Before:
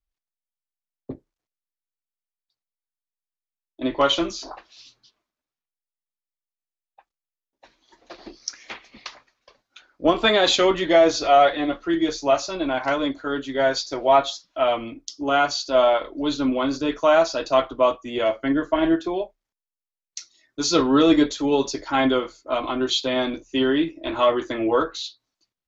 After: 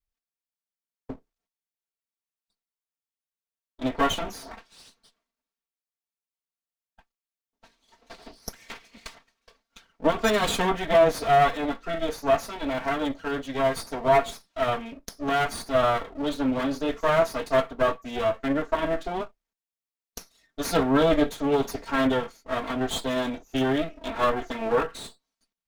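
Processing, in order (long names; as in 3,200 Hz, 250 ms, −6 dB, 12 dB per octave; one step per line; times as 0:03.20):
lower of the sound and its delayed copy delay 4.4 ms
dynamic equaliser 4,900 Hz, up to −7 dB, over −41 dBFS, Q 0.88
level −2 dB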